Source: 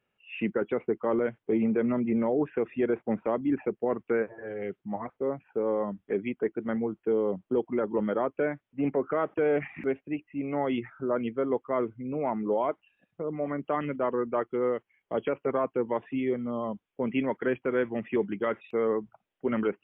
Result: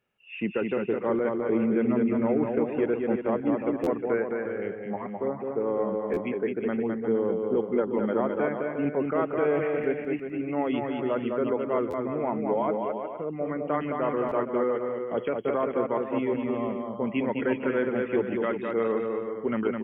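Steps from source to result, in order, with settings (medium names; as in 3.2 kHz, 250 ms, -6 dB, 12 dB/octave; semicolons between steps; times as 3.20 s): on a send: bouncing-ball echo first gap 210 ms, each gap 0.7×, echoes 5; on the sum: buffer glitch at 3.83/6.13/11.90/14.28 s, samples 512, times 2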